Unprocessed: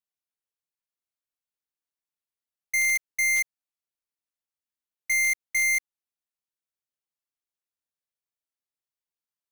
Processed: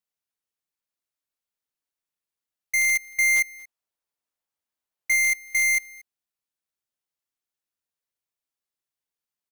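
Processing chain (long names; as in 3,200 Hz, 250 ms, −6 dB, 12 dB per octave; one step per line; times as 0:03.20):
0:03.09–0:05.16: parametric band 780 Hz +5.5 dB 1.9 octaves
on a send: single-tap delay 231 ms −23.5 dB
on the sum: level +2 dB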